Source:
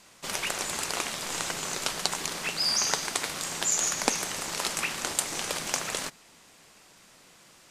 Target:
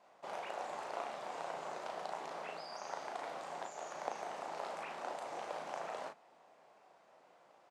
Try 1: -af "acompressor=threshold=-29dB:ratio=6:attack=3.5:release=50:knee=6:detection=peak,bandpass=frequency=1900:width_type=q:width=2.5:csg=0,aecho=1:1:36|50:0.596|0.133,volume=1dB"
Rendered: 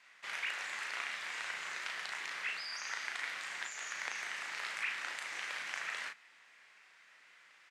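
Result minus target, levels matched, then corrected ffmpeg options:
500 Hz band −19.5 dB
-af "acompressor=threshold=-29dB:ratio=6:attack=3.5:release=50:knee=6:detection=peak,bandpass=frequency=700:width_type=q:width=2.5:csg=0,aecho=1:1:36|50:0.596|0.133,volume=1dB"

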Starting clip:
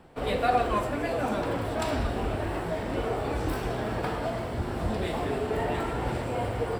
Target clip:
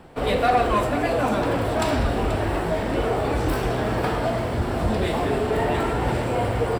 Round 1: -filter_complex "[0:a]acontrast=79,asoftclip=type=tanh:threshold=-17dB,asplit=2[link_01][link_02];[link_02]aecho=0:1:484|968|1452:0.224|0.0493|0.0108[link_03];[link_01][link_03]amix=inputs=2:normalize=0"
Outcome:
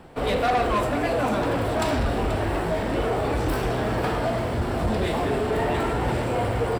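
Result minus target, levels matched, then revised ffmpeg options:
soft clipping: distortion +8 dB
-filter_complex "[0:a]acontrast=79,asoftclip=type=tanh:threshold=-10.5dB,asplit=2[link_01][link_02];[link_02]aecho=0:1:484|968|1452:0.224|0.0493|0.0108[link_03];[link_01][link_03]amix=inputs=2:normalize=0"

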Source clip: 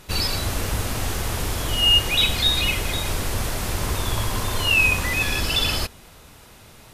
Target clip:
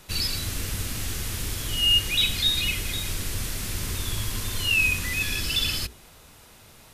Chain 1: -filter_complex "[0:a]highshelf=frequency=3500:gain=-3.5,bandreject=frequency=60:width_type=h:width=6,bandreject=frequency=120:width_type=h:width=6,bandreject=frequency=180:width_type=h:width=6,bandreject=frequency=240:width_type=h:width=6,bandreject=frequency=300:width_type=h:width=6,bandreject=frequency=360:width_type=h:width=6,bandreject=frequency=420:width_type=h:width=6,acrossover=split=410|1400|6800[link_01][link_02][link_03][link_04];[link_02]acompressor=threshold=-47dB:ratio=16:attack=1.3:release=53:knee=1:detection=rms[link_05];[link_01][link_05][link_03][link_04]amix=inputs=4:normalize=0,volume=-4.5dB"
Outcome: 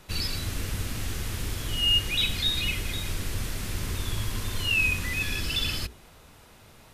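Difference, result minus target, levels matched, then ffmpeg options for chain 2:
8,000 Hz band −3.0 dB
-filter_complex "[0:a]highshelf=frequency=3500:gain=3.5,bandreject=frequency=60:width_type=h:width=6,bandreject=frequency=120:width_type=h:width=6,bandreject=frequency=180:width_type=h:width=6,bandreject=frequency=240:width_type=h:width=6,bandreject=frequency=300:width_type=h:width=6,bandreject=frequency=360:width_type=h:width=6,bandreject=frequency=420:width_type=h:width=6,acrossover=split=410|1400|6800[link_01][link_02][link_03][link_04];[link_02]acompressor=threshold=-47dB:ratio=16:attack=1.3:release=53:knee=1:detection=rms[link_05];[link_01][link_05][link_03][link_04]amix=inputs=4:normalize=0,volume=-4.5dB"

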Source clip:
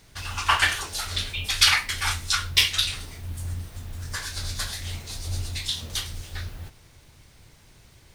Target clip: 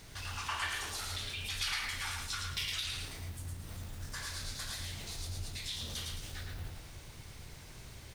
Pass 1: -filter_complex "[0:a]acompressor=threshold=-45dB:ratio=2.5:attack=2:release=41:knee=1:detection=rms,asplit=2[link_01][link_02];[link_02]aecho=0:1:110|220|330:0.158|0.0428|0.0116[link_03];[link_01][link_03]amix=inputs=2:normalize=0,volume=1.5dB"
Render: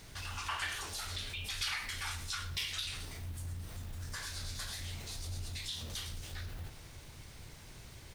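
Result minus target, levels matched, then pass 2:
echo-to-direct −12 dB
-filter_complex "[0:a]acompressor=threshold=-45dB:ratio=2.5:attack=2:release=41:knee=1:detection=rms,asplit=2[link_01][link_02];[link_02]aecho=0:1:110|220|330|440:0.631|0.17|0.046|0.0124[link_03];[link_01][link_03]amix=inputs=2:normalize=0,volume=1.5dB"

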